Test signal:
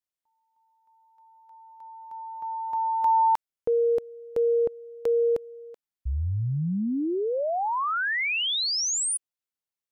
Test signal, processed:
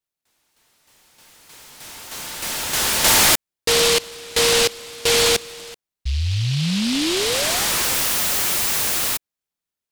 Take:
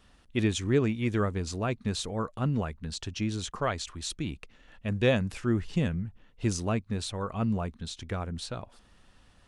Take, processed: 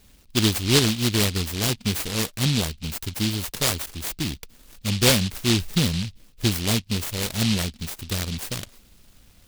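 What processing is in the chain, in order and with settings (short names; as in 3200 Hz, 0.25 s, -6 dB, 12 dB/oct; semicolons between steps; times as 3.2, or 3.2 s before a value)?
noise-modulated delay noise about 3500 Hz, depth 0.36 ms; gain +6 dB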